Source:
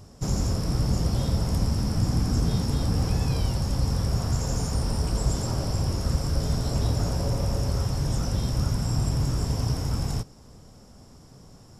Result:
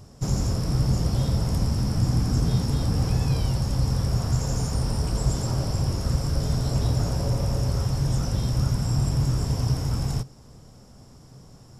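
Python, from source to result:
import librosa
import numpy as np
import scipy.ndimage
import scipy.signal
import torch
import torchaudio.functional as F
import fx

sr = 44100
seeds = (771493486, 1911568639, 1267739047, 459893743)

y = fx.peak_eq(x, sr, hz=130.0, db=6.5, octaves=0.22)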